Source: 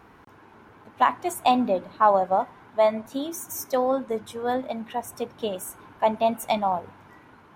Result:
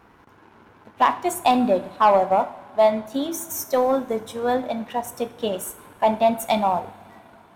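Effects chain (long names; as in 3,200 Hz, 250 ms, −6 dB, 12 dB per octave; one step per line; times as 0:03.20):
leveller curve on the samples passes 1
coupled-rooms reverb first 0.54 s, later 4.1 s, from −21 dB, DRR 10.5 dB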